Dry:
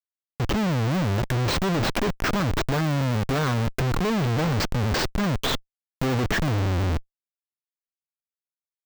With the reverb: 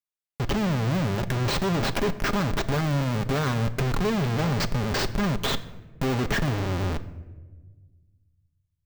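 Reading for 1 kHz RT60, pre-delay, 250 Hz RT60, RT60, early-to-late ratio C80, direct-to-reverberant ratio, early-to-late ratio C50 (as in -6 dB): 1.0 s, 5 ms, 1.9 s, 1.3 s, 17.0 dB, 8.5 dB, 15.5 dB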